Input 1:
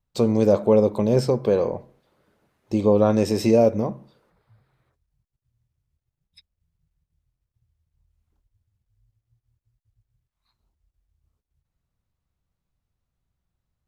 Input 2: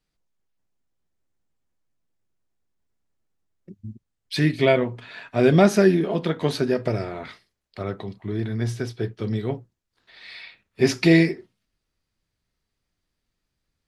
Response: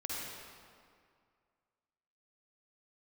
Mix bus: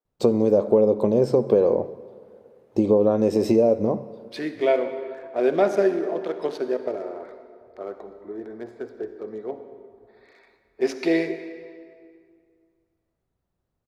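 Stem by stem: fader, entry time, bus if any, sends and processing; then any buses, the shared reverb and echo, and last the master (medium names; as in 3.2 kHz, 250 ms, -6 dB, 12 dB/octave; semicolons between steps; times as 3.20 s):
-4.5 dB, 0.05 s, send -17.5 dB, compression 6:1, threshold -21 dBFS, peak gain reduction 9 dB
-11.5 dB, 0.00 s, send -8 dB, local Wiener filter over 15 samples; high-pass 460 Hz 12 dB/octave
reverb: on, RT60 2.2 s, pre-delay 45 ms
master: peaking EQ 420 Hz +12 dB 2.5 oct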